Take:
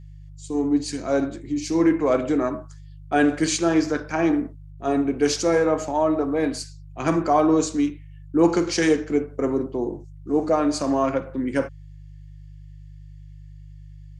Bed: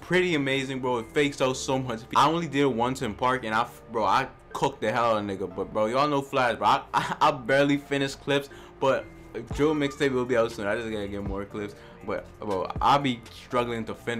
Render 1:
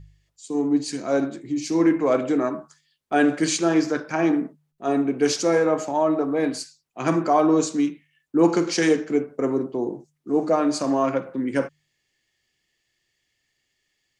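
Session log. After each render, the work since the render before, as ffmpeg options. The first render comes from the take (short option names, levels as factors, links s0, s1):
-af "bandreject=f=50:t=h:w=4,bandreject=f=100:t=h:w=4,bandreject=f=150:t=h:w=4"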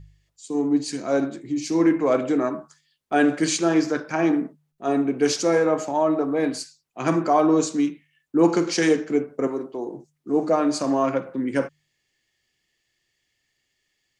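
-filter_complex "[0:a]asettb=1/sr,asplit=3[s0][s1][s2];[s0]atrim=end=9.474[s3];[s1]atrim=start=9.47:end=9.94,asetpts=PTS-STARTPTS,afade=t=in:d=0.004:c=qsin,afade=t=out:st=0.466:d=0.004:c=qsin,equalizer=f=110:w=0.44:g=-12[s4];[s2]atrim=start=9.936[s5];[s3][s4]acrossfade=d=0.004:c1=hsin:c2=qsin[s6];[s6][s5]acrossfade=d=0.004:c1=qsin:c2=hsin"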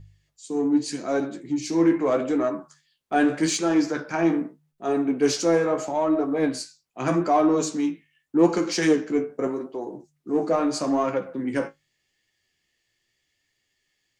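-filter_complex "[0:a]flanger=delay=9.5:depth=8.7:regen=41:speed=0.81:shape=sinusoidal,asplit=2[s0][s1];[s1]asoftclip=type=tanh:threshold=0.0562,volume=0.473[s2];[s0][s2]amix=inputs=2:normalize=0"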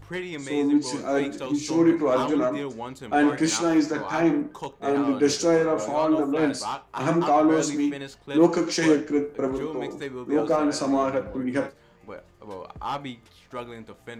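-filter_complex "[1:a]volume=0.335[s0];[0:a][s0]amix=inputs=2:normalize=0"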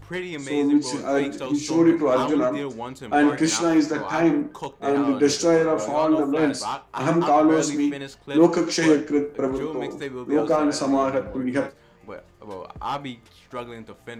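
-af "volume=1.26"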